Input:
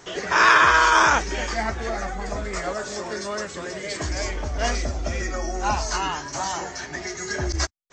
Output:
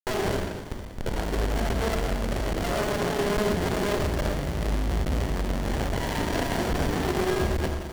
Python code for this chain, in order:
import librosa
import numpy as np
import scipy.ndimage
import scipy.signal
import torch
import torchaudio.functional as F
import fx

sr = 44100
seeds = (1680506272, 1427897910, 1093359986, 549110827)

y = fx.ripple_eq(x, sr, per_octave=1.6, db=7)
y = fx.spec_topn(y, sr, count=8)
y = fx.over_compress(y, sr, threshold_db=-27.0, ratio=-0.5)
y = fx.schmitt(y, sr, flips_db=-34.0)
y = fx.peak_eq(y, sr, hz=4500.0, db=6.0, octaves=2.9)
y = fx.echo_wet_highpass(y, sr, ms=520, feedback_pct=72, hz=2900.0, wet_db=-12)
y = fx.rev_schroeder(y, sr, rt60_s=1.5, comb_ms=27, drr_db=-1.5)
y = fx.buffer_crackle(y, sr, first_s=0.85, period_s=0.84, block=512, kind='zero')
y = fx.running_max(y, sr, window=33)